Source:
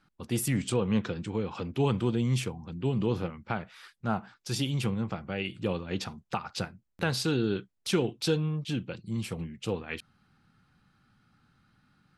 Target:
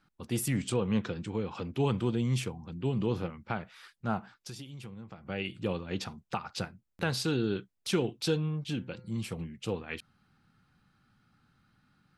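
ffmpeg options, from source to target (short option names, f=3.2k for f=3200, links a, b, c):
-filter_complex "[0:a]asplit=3[a][b][c];[a]afade=t=out:st=4.35:d=0.02[d];[b]acompressor=threshold=-39dB:ratio=16,afade=t=in:st=4.35:d=0.02,afade=t=out:st=5.25:d=0.02[e];[c]afade=t=in:st=5.25:d=0.02[f];[d][e][f]amix=inputs=3:normalize=0,asplit=3[g][h][i];[g]afade=t=out:st=8.55:d=0.02[j];[h]bandreject=f=127.5:t=h:w=4,bandreject=f=255:t=h:w=4,bandreject=f=382.5:t=h:w=4,bandreject=f=510:t=h:w=4,bandreject=f=637.5:t=h:w=4,bandreject=f=765:t=h:w=4,bandreject=f=892.5:t=h:w=4,bandreject=f=1.02k:t=h:w=4,bandreject=f=1.1475k:t=h:w=4,bandreject=f=1.275k:t=h:w=4,bandreject=f=1.4025k:t=h:w=4,bandreject=f=1.53k:t=h:w=4,bandreject=f=1.6575k:t=h:w=4,bandreject=f=1.785k:t=h:w=4,bandreject=f=1.9125k:t=h:w=4,bandreject=f=2.04k:t=h:w=4,bandreject=f=2.1675k:t=h:w=4,bandreject=f=2.295k:t=h:w=4,afade=t=in:st=8.55:d=0.02,afade=t=out:st=9.24:d=0.02[k];[i]afade=t=in:st=9.24:d=0.02[l];[j][k][l]amix=inputs=3:normalize=0,volume=-2dB"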